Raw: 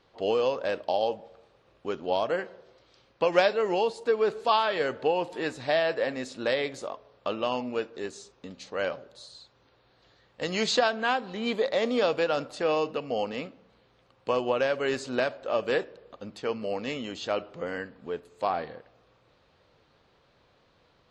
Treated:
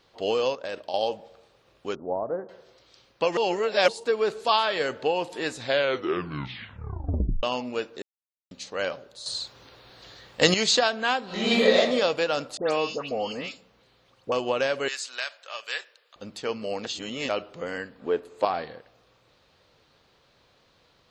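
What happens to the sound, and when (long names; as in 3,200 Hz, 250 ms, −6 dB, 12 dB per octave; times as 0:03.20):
0:00.53–0:00.94: output level in coarse steps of 11 dB
0:01.95–0:02.49: Bessel low-pass filter 730 Hz, order 8
0:03.37–0:03.88: reverse
0:05.55: tape stop 1.88 s
0:08.02–0:08.51: silence
0:09.26–0:10.54: clip gain +11 dB
0:11.25–0:11.76: thrown reverb, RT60 0.82 s, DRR −7.5 dB
0:12.57–0:14.32: all-pass dispersion highs, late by 148 ms, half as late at 2,400 Hz
0:14.88–0:16.16: high-pass filter 1,500 Hz
0:16.85–0:17.29: reverse
0:18.00–0:18.45: drawn EQ curve 160 Hz 0 dB, 320 Hz +9 dB, 1,500 Hz +5 dB, 7,700 Hz −5 dB
whole clip: high-shelf EQ 3,300 Hz +10 dB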